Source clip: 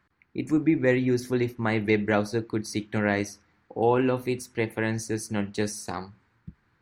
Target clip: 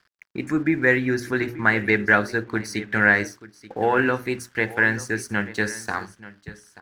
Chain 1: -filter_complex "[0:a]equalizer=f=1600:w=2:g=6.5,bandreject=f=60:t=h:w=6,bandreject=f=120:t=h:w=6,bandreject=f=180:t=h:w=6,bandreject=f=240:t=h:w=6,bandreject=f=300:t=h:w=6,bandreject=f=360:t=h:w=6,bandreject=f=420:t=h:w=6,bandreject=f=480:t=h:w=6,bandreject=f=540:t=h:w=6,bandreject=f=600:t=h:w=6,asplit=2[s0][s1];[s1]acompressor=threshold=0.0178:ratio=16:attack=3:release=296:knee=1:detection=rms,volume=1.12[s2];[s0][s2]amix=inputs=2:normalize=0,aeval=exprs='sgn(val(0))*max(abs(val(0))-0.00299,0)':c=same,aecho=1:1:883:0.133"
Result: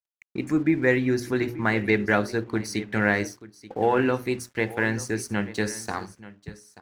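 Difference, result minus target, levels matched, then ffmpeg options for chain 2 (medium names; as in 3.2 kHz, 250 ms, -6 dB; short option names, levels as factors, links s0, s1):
2 kHz band -4.0 dB
-filter_complex "[0:a]equalizer=f=1600:w=2:g=16,bandreject=f=60:t=h:w=6,bandreject=f=120:t=h:w=6,bandreject=f=180:t=h:w=6,bandreject=f=240:t=h:w=6,bandreject=f=300:t=h:w=6,bandreject=f=360:t=h:w=6,bandreject=f=420:t=h:w=6,bandreject=f=480:t=h:w=6,bandreject=f=540:t=h:w=6,bandreject=f=600:t=h:w=6,asplit=2[s0][s1];[s1]acompressor=threshold=0.0178:ratio=16:attack=3:release=296:knee=1:detection=rms,volume=1.12[s2];[s0][s2]amix=inputs=2:normalize=0,aeval=exprs='sgn(val(0))*max(abs(val(0))-0.00299,0)':c=same,aecho=1:1:883:0.133"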